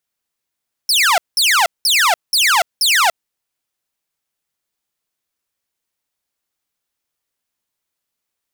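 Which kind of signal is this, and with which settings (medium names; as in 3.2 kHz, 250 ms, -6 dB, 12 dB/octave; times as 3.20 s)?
burst of laser zaps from 5.6 kHz, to 640 Hz, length 0.29 s saw, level -8 dB, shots 5, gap 0.19 s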